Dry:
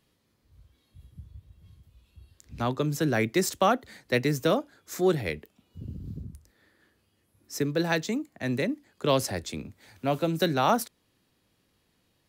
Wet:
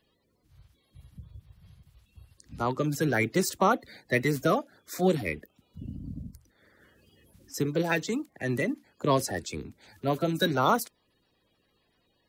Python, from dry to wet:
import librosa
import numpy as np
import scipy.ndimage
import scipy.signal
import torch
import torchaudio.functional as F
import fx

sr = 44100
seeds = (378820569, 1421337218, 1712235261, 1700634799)

y = fx.spec_quant(x, sr, step_db=30)
y = fx.band_squash(y, sr, depth_pct=70, at=(6.28, 7.54))